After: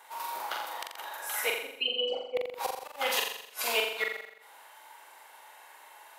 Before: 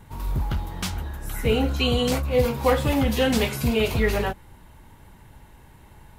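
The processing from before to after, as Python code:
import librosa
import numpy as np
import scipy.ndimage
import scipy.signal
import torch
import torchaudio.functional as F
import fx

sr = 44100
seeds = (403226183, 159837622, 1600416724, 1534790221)

y = fx.envelope_sharpen(x, sr, power=3.0, at=(1.52, 2.37))
y = scipy.signal.sosfilt(scipy.signal.butter(4, 620.0, 'highpass', fs=sr, output='sos'), y)
y = fx.gate_flip(y, sr, shuts_db=-19.0, range_db=-40)
y = fx.room_flutter(y, sr, wall_m=7.3, rt60_s=0.73)
y = fx.end_taper(y, sr, db_per_s=260.0)
y = y * librosa.db_to_amplitude(2.0)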